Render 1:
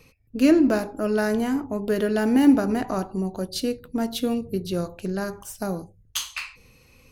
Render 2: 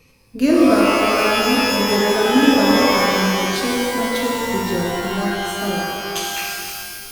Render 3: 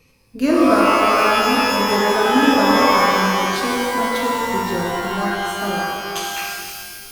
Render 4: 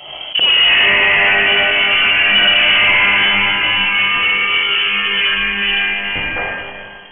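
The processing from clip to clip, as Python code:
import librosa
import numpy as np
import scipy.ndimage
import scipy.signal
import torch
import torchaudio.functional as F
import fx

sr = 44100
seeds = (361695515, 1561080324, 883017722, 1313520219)

y1 = fx.rev_shimmer(x, sr, seeds[0], rt60_s=2.1, semitones=12, shimmer_db=-2, drr_db=-2.5)
y2 = fx.dynamic_eq(y1, sr, hz=1100.0, q=1.1, threshold_db=-33.0, ratio=4.0, max_db=8)
y2 = F.gain(torch.from_numpy(y2), -2.5).numpy()
y3 = fx.leveller(y2, sr, passes=3)
y3 = fx.freq_invert(y3, sr, carrier_hz=3200)
y3 = fx.pre_swell(y3, sr, db_per_s=59.0)
y3 = F.gain(torch.from_numpy(y3), -4.5).numpy()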